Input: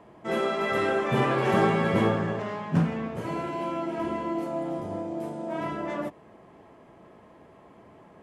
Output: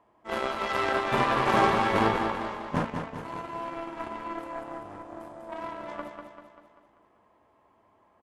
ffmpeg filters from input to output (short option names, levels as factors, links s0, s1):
-af "aeval=exprs='0.282*(cos(1*acos(clip(val(0)/0.282,-1,1)))-cos(1*PI/2))+0.0316*(cos(7*acos(clip(val(0)/0.282,-1,1)))-cos(7*PI/2))':c=same,equalizer=f=160:t=o:w=0.67:g=-10,equalizer=f=400:t=o:w=0.67:g=-3,equalizer=f=1000:t=o:w=0.67:g=6,aecho=1:1:195|390|585|780|975|1170:0.501|0.261|0.136|0.0705|0.0366|0.0191"